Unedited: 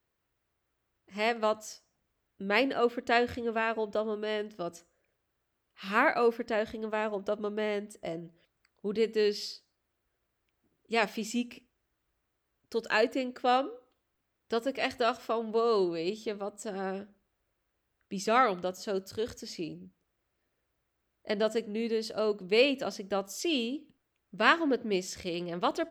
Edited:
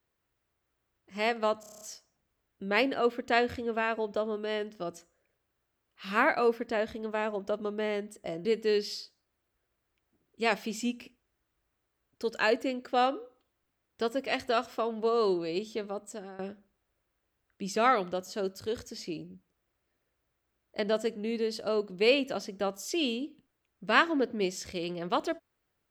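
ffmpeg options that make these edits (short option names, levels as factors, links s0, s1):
-filter_complex "[0:a]asplit=10[s0][s1][s2][s3][s4][s5][s6][s7][s8][s9];[s0]atrim=end=1.632[s10];[s1]atrim=start=1.598:end=1.632[s11];[s2]atrim=start=1.598:end=1.632[s12];[s3]atrim=start=1.598:end=1.632[s13];[s4]atrim=start=1.598:end=1.632[s14];[s5]atrim=start=1.598:end=1.632[s15];[s6]atrim=start=1.598:end=1.632[s16];[s7]atrim=start=1.598:end=8.242[s17];[s8]atrim=start=8.958:end=16.9,asetpts=PTS-STARTPTS,afade=t=out:st=7.582:d=0.36:silence=0.112202[s18];[s9]atrim=start=16.9,asetpts=PTS-STARTPTS,afade=t=in:d=0.004:c=hsin:silence=0.112202[s19];[s10][s11]acrossfade=d=0.004:c1=hsin:c2=hsin[s20];[s20][s12]acrossfade=d=0.004:c1=hsin:c2=hsin[s21];[s21][s13]acrossfade=d=0.004:c1=hsin:c2=hsin[s22];[s22][s14]acrossfade=d=0.004:c1=hsin:c2=hsin[s23];[s23][s15]acrossfade=d=0.004:c1=hsin:c2=hsin[s24];[s24][s16]acrossfade=d=0.004:c1=hsin:c2=hsin[s25];[s25][s17]acrossfade=d=0.004:c1=hsin:c2=hsin[s26];[s18][s19]concat=n=2:v=0:a=1[s27];[s26][s27]acrossfade=d=0.004:c1=hsin:c2=hsin"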